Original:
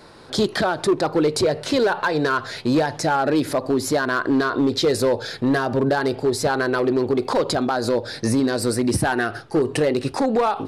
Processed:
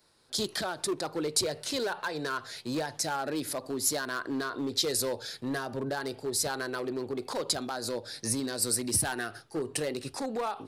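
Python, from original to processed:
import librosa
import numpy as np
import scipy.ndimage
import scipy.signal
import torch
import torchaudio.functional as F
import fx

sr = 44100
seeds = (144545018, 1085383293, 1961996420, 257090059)

y = F.preemphasis(torch.from_numpy(x), 0.8).numpy()
y = fx.band_widen(y, sr, depth_pct=40)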